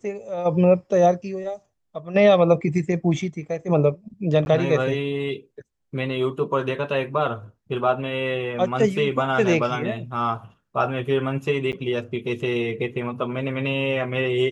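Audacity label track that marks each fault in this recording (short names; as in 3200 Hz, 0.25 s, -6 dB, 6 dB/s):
4.450000	4.460000	gap 11 ms
11.720000	11.730000	gap 9.1 ms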